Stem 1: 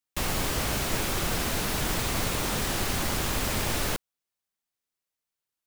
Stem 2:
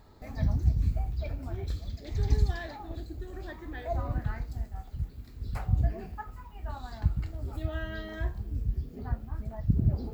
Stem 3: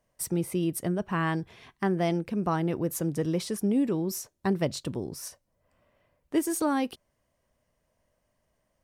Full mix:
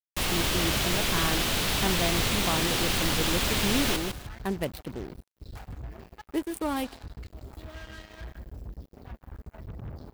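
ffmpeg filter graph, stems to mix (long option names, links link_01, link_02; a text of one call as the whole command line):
ffmpeg -i stem1.wav -i stem2.wav -i stem3.wav -filter_complex "[0:a]volume=-1dB,asplit=2[link_01][link_02];[link_02]volume=-7dB[link_03];[1:a]highshelf=frequency=2500:gain=5.5,alimiter=limit=-18.5dB:level=0:latency=1:release=270,asoftclip=type=tanh:threshold=-26dB,volume=-8dB,asplit=2[link_04][link_05];[link_05]volume=-10dB[link_06];[2:a]highpass=frequency=130:poles=1,adynamicsmooth=sensitivity=6.5:basefreq=660,aexciter=amount=9.4:drive=5.3:freq=9100,volume=-3dB,asplit=2[link_07][link_08];[link_08]volume=-23.5dB[link_09];[link_03][link_06][link_09]amix=inputs=3:normalize=0,aecho=0:1:153|306|459:1|0.19|0.0361[link_10];[link_01][link_04][link_07][link_10]amix=inputs=4:normalize=0,adynamicequalizer=threshold=0.00355:dfrequency=3300:dqfactor=1.2:tfrequency=3300:tqfactor=1.2:attack=5:release=100:ratio=0.375:range=3.5:mode=boostabove:tftype=bell,acrusher=bits=6:mix=0:aa=0.5" out.wav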